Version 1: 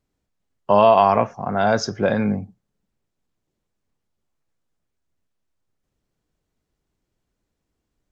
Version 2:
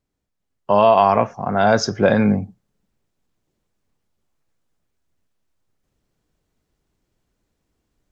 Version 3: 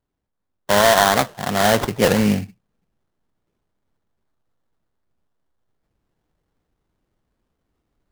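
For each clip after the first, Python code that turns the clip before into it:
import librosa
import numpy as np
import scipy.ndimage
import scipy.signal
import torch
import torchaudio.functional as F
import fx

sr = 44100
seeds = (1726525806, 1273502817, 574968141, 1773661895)

y1 = fx.rider(x, sr, range_db=10, speed_s=2.0)
y1 = y1 * librosa.db_to_amplitude(2.5)
y2 = fx.sample_hold(y1, sr, seeds[0], rate_hz=2500.0, jitter_pct=20)
y2 = fx.record_warp(y2, sr, rpm=78.0, depth_cents=250.0)
y2 = y2 * librosa.db_to_amplitude(-1.0)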